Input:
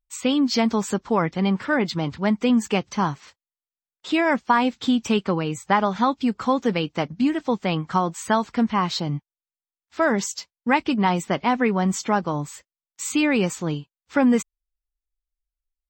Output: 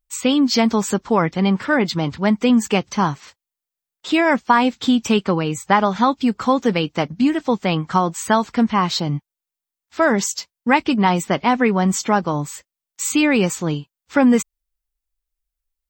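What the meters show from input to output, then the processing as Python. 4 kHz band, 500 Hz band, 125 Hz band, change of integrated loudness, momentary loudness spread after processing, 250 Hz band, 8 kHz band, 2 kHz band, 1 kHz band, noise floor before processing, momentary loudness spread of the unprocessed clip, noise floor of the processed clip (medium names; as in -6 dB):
+4.5 dB, +4.0 dB, +4.0 dB, +4.0 dB, 9 LU, +4.0 dB, +6.0 dB, +4.0 dB, +4.0 dB, under -85 dBFS, 9 LU, under -85 dBFS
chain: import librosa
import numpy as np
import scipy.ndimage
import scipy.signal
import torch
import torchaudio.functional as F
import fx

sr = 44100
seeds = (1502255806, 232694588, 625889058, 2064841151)

y = fx.high_shelf(x, sr, hz=9400.0, db=6.5)
y = F.gain(torch.from_numpy(y), 4.0).numpy()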